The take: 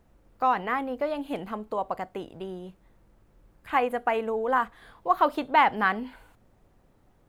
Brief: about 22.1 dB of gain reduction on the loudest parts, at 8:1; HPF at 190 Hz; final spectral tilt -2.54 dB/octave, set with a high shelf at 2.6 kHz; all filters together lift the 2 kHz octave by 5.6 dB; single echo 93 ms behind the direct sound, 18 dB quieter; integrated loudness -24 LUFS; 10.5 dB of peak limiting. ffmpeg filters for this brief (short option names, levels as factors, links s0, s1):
-af "highpass=190,equalizer=f=2000:t=o:g=3.5,highshelf=f=2600:g=8.5,acompressor=threshold=0.0158:ratio=8,alimiter=level_in=2.24:limit=0.0631:level=0:latency=1,volume=0.447,aecho=1:1:93:0.126,volume=8.91"